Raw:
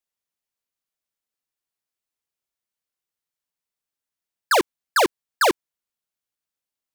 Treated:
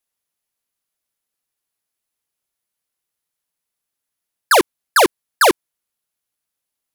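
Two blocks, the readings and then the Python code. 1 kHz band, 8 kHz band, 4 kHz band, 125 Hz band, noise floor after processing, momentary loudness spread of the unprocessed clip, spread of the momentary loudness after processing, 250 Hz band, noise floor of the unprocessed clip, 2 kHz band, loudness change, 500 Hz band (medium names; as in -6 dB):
+5.5 dB, +7.0 dB, +5.5 dB, +5.5 dB, -82 dBFS, 3 LU, 3 LU, +5.5 dB, under -85 dBFS, +5.5 dB, +5.5 dB, +5.5 dB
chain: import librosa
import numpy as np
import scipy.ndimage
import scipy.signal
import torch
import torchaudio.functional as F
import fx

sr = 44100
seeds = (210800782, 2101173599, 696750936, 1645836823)

y = fx.peak_eq(x, sr, hz=11000.0, db=8.5, octaves=0.23)
y = y * librosa.db_to_amplitude(5.5)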